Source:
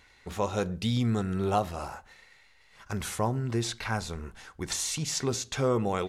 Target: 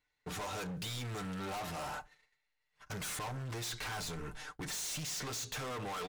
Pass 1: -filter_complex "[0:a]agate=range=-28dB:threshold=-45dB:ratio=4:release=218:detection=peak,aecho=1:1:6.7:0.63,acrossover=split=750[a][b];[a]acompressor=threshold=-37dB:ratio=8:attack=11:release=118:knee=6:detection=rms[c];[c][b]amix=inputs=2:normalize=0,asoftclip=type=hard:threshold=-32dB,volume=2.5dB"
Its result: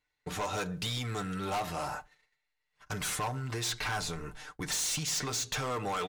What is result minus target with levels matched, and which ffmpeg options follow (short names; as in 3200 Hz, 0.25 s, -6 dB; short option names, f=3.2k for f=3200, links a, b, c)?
hard clip: distortion -5 dB
-filter_complex "[0:a]agate=range=-28dB:threshold=-45dB:ratio=4:release=218:detection=peak,aecho=1:1:6.7:0.63,acrossover=split=750[a][b];[a]acompressor=threshold=-37dB:ratio=8:attack=11:release=118:knee=6:detection=rms[c];[c][b]amix=inputs=2:normalize=0,asoftclip=type=hard:threshold=-41dB,volume=2.5dB"